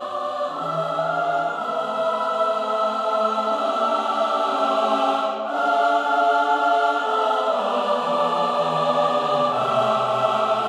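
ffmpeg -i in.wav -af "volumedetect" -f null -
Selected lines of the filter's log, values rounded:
mean_volume: -21.1 dB
max_volume: -7.2 dB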